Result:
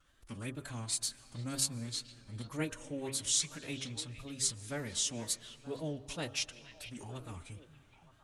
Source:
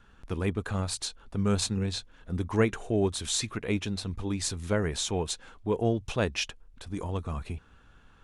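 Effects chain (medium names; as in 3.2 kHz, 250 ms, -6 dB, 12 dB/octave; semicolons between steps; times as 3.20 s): pre-emphasis filter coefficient 0.8; wow and flutter 130 cents; de-hum 52.29 Hz, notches 27; formant-preserving pitch shift +4.5 st; repeats whose band climbs or falls 463 ms, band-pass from 2.5 kHz, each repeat -1.4 oct, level -10 dB; on a send at -19.5 dB: reverberation RT60 3.9 s, pre-delay 95 ms; on the sum: trim +2 dB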